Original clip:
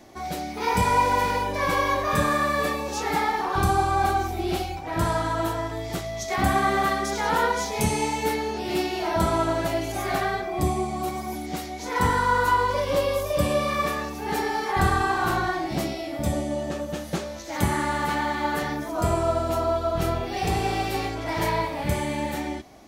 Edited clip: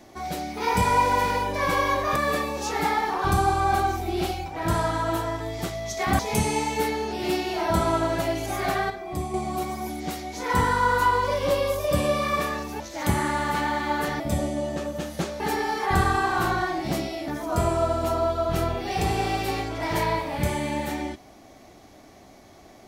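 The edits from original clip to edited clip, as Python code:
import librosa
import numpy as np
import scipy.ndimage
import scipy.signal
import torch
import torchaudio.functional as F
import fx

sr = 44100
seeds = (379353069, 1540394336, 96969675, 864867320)

y = fx.edit(x, sr, fx.cut(start_s=2.16, length_s=0.31),
    fx.cut(start_s=6.5, length_s=1.15),
    fx.clip_gain(start_s=10.36, length_s=0.44, db=-6.0),
    fx.swap(start_s=14.26, length_s=1.88, other_s=17.34, other_length_s=1.4), tone=tone)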